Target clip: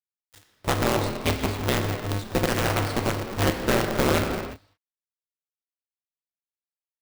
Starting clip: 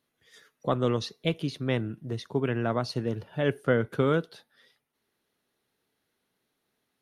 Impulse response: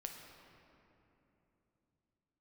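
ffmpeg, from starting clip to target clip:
-filter_complex "[0:a]asplit=2[link_01][link_02];[link_02]acompressor=threshold=-34dB:ratio=10,volume=1dB[link_03];[link_01][link_03]amix=inputs=2:normalize=0,acrusher=bits=4:dc=4:mix=0:aa=0.000001[link_04];[1:a]atrim=start_sample=2205,afade=type=out:start_time=0.42:duration=0.01,atrim=end_sample=18963[link_05];[link_04][link_05]afir=irnorm=-1:irlink=0,aeval=exprs='val(0)*sgn(sin(2*PI*100*n/s))':channel_layout=same,volume=3dB"

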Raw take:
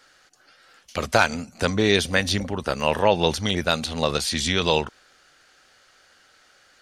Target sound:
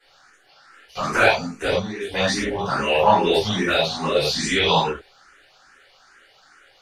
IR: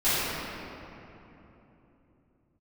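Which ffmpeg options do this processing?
-filter_complex "[0:a]equalizer=frequency=1100:width=0.43:gain=6,asettb=1/sr,asplit=3[link_01][link_02][link_03];[link_01]atrim=end=1.704[link_04];[link_02]atrim=start=1.7:end=2.1,asetpts=PTS-STARTPTS,afade=type=in:duration=0.004:curve=qsin,afade=type=out:start_time=0.396:duration=0.004:curve=qsin,acompressor=threshold=-26dB:ratio=16[link_05];[link_03]atrim=start=2.096[link_06];[link_04][link_05]acrossfade=duration=0.004:curve1=hsin:curve2=qsin[link_07];[link_07][link_06]acrossfade=duration=0.004:curve1=qsin:curve2=hsin[link_08];[1:a]atrim=start_sample=2205,atrim=end_sample=6174,asetrate=48510,aresample=44100[link_09];[link_08][link_09]afir=irnorm=-1:irlink=0,asplit=2[link_10][link_11];[link_11]afreqshift=2.4[link_12];[link_10][link_12]amix=inputs=2:normalize=1,volume=-9.5dB"

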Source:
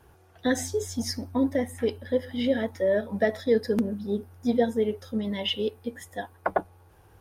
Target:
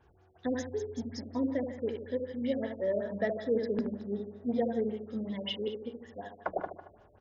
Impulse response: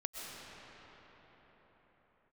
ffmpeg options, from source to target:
-filter_complex "[0:a]asettb=1/sr,asplit=3[link_01][link_02][link_03];[link_01]atrim=end=1.974[link_04];[link_02]atrim=start=1.97:end=2.5,asetpts=PTS-STARTPTS,afade=type=in:duration=0.004:curve=qsin,afade=type=out:start_time=0.526:duration=0.004:curve=qsin,equalizer=frequency=810:width=1.7:gain=-4.5[link_05];[link_03]atrim=start=2.496[link_06];[link_04][link_05]acrossfade=duration=0.004:curve1=hsin:curve2=qsin[link_07];[link_07][link_06]acrossfade=duration=0.004:curve1=qsin:curve2=hsin,aecho=1:1:75|150|225|300|375|450:0.501|0.251|0.125|0.0626|0.0313|0.0157,asplit=2[link_08][link_09];[1:a]atrim=start_sample=2205[link_10];[link_09][link_10]afir=irnorm=-1:irlink=0,volume=-22.5dB[link_11];[link_08][link_11]amix=inputs=2:normalize=0,afftfilt=real='re*lt(b*sr/1024,620*pow(7500/620,0.5+0.5*sin(2*PI*5.3*pts/sr)))':imag='im*lt(b*sr/1024,620*pow(7500/620,0.5+0.5*sin(2*PI*5.3*pts/sr)))':win_size=1024:overlap=0.75,volume=-8dB"

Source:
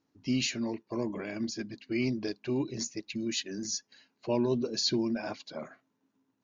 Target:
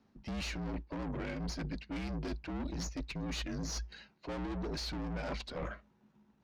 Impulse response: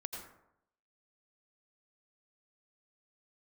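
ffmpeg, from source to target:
-af "aeval=exprs='(tanh(89.1*val(0)+0.75)-tanh(0.75))/89.1':channel_layout=same,adynamicsmooth=sensitivity=6:basefreq=4600,afreqshift=-57,areverse,acompressor=threshold=-49dB:ratio=6,areverse,volume=13dB"

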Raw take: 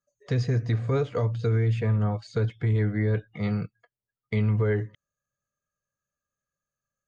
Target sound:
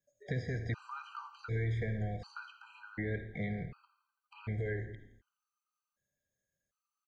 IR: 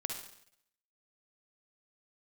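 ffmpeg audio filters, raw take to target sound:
-filter_complex "[0:a]acrossover=split=2500[link_01][link_02];[link_02]acompressor=threshold=-59dB:ratio=4:attack=1:release=60[link_03];[link_01][link_03]amix=inputs=2:normalize=0,lowshelf=frequency=81:gain=-11.5,acrossover=split=600|1400[link_04][link_05][link_06];[link_04]acompressor=threshold=-41dB:ratio=4[link_07];[link_05]acompressor=threshold=-50dB:ratio=4[link_08];[link_06]acompressor=threshold=-43dB:ratio=4[link_09];[link_07][link_08][link_09]amix=inputs=3:normalize=0,asplit=6[link_10][link_11][link_12][link_13][link_14][link_15];[link_11]adelay=84,afreqshift=-38,volume=-17dB[link_16];[link_12]adelay=168,afreqshift=-76,volume=-22dB[link_17];[link_13]adelay=252,afreqshift=-114,volume=-27.1dB[link_18];[link_14]adelay=336,afreqshift=-152,volume=-32.1dB[link_19];[link_15]adelay=420,afreqshift=-190,volume=-37.1dB[link_20];[link_10][link_16][link_17][link_18][link_19][link_20]amix=inputs=6:normalize=0,asplit=2[link_21][link_22];[1:a]atrim=start_sample=2205,lowshelf=frequency=150:gain=11.5[link_23];[link_22][link_23]afir=irnorm=-1:irlink=0,volume=-2dB[link_24];[link_21][link_24]amix=inputs=2:normalize=0,afftfilt=real='re*gt(sin(2*PI*0.67*pts/sr)*(1-2*mod(floor(b*sr/1024/790),2)),0)':imag='im*gt(sin(2*PI*0.67*pts/sr)*(1-2*mod(floor(b*sr/1024/790),2)),0)':win_size=1024:overlap=0.75,volume=-3dB"

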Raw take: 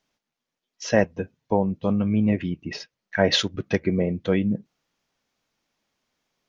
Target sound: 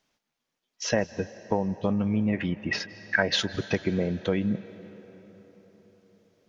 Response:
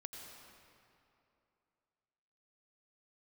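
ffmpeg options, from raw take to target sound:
-filter_complex "[0:a]asettb=1/sr,asplit=3[link_01][link_02][link_03];[link_01]atrim=end=2.334[link_04];[link_02]atrim=start=2.33:end=3.23,asetpts=PTS-STARTPTS,afade=type=in:duration=0.004:curve=qsin,afade=type=out:start_time=0.896:duration=0.004:curve=qsin,equalizer=frequency=1500:width_type=o:width=1.5:gain=10.5[link_05];[link_03]atrim=start=3.226[link_06];[link_04][link_05]acrossfade=duration=0.004:curve1=hsin:curve2=qsin[link_07];[link_07][link_06]acrossfade=duration=0.004:curve1=qsin:curve2=hsin,acompressor=threshold=-24dB:ratio=3,asplit=2[link_08][link_09];[1:a]atrim=start_sample=2205,asetrate=22932,aresample=44100,lowshelf=frequency=400:gain=-8.5[link_10];[link_09][link_10]afir=irnorm=-1:irlink=0,volume=-10dB[link_11];[link_08][link_11]amix=inputs=2:normalize=0"

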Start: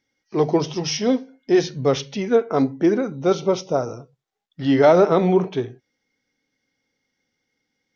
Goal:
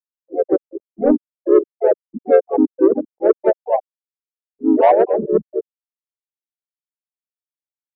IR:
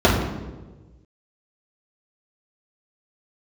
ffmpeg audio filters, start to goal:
-filter_complex "[0:a]bandreject=frequency=60:width_type=h:width=6,bandreject=frequency=120:width_type=h:width=6,bandreject=frequency=180:width_type=h:width=6,bandreject=frequency=240:width_type=h:width=6,bandreject=frequency=300:width_type=h:width=6,bandreject=frequency=360:width_type=h:width=6,bandreject=frequency=420:width_type=h:width=6,afftfilt=real='re*gte(hypot(re,im),0.794)':imag='im*gte(hypot(re,im),0.794)':win_size=1024:overlap=0.75,adynamicequalizer=threshold=0.0282:dfrequency=200:dqfactor=0.81:tfrequency=200:tqfactor=0.81:attack=5:release=100:ratio=0.375:range=1.5:mode=cutabove:tftype=bell,dynaudnorm=framelen=150:gausssize=7:maxgain=13dB,asetrate=50951,aresample=44100,atempo=0.865537,asoftclip=type=tanh:threshold=-4dB,asplit=4[link_01][link_02][link_03][link_04];[link_02]asetrate=33038,aresample=44100,atempo=1.33484,volume=-13dB[link_05];[link_03]asetrate=37084,aresample=44100,atempo=1.18921,volume=-3dB[link_06];[link_04]asetrate=58866,aresample=44100,atempo=0.749154,volume=-12dB[link_07];[link_01][link_05][link_06][link_07]amix=inputs=4:normalize=0,volume=-2.5dB"

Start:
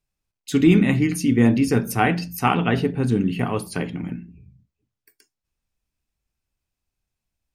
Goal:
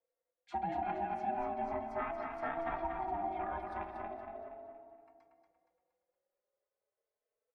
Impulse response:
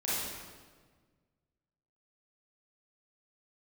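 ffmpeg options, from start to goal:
-filter_complex "[0:a]asplit=2[link_01][link_02];[1:a]atrim=start_sample=2205,adelay=119[link_03];[link_02][link_03]afir=irnorm=-1:irlink=0,volume=-19.5dB[link_04];[link_01][link_04]amix=inputs=2:normalize=0,aeval=exprs='val(0)*sin(2*PI*500*n/s)':channel_layout=same,lowpass=7500,acrossover=split=530 2200:gain=0.1 1 0.1[link_05][link_06][link_07];[link_05][link_06][link_07]amix=inputs=3:normalize=0,bandreject=frequency=3000:width=9.8,bandreject=frequency=57.99:width_type=h:width=4,bandreject=frequency=115.98:width_type=h:width=4,acompressor=threshold=-41dB:ratio=2,aemphasis=mode=reproduction:type=bsi,aecho=1:1:234|468|702|936|1170:0.531|0.228|0.0982|0.0422|0.0181,asplit=2[link_08][link_09];[link_09]adelay=3.9,afreqshift=0.37[link_10];[link_08][link_10]amix=inputs=2:normalize=1"

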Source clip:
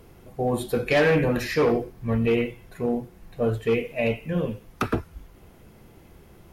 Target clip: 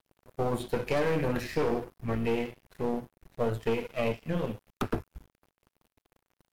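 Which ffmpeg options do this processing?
ffmpeg -i in.wav -filter_complex "[0:a]acrossover=split=940|5600[link_01][link_02][link_03];[link_01]acompressor=threshold=-24dB:ratio=4[link_04];[link_02]acompressor=threshold=-37dB:ratio=4[link_05];[link_03]acompressor=threshold=-48dB:ratio=4[link_06];[link_04][link_05][link_06]amix=inputs=3:normalize=0,aeval=exprs='(tanh(11.2*val(0)+0.7)-tanh(0.7))/11.2':channel_layout=same,aeval=exprs='sgn(val(0))*max(abs(val(0))-0.00422,0)':channel_layout=same,volume=2.5dB" out.wav

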